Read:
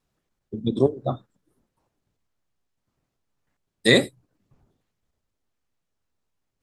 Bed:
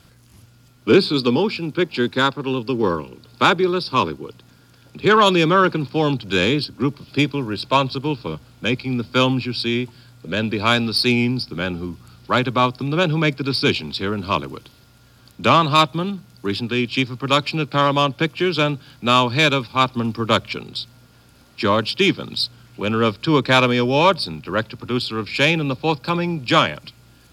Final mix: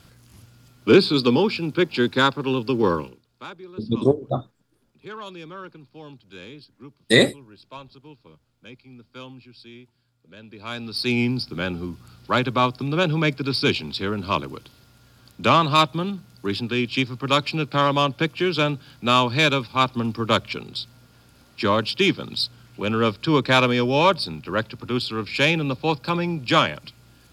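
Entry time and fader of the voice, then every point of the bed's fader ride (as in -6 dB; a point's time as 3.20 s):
3.25 s, +1.5 dB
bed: 3.06 s -0.5 dB
3.27 s -23 dB
10.43 s -23 dB
11.20 s -2.5 dB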